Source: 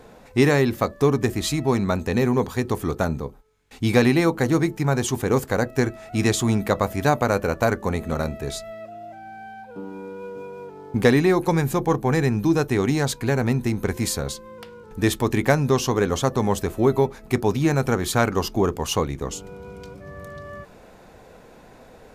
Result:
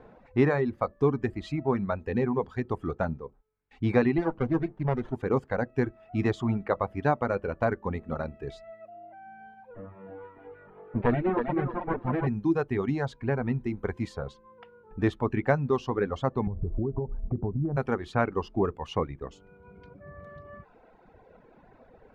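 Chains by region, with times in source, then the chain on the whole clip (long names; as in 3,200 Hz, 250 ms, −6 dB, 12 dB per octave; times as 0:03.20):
0:04.18–0:05.15: low-pass filter 6,200 Hz + windowed peak hold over 17 samples
0:09.74–0:12.27: lower of the sound and its delayed copy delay 8.8 ms + high-frequency loss of the air 350 metres + feedback echo with a high-pass in the loop 320 ms, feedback 39%, high-pass 220 Hz, level −3.5 dB
0:16.47–0:17.77: low-pass filter 1,100 Hz 24 dB per octave + spectral tilt −4.5 dB per octave + downward compressor 12 to 1, threshold −18 dBFS
whole clip: low-pass filter 1,900 Hz 12 dB per octave; reverb reduction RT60 1.7 s; level −4.5 dB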